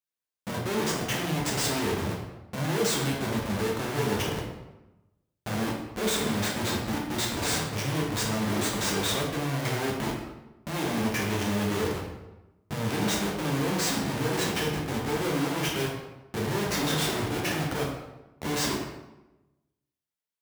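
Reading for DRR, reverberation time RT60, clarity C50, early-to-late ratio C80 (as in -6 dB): -3.0 dB, 1.0 s, 3.0 dB, 6.0 dB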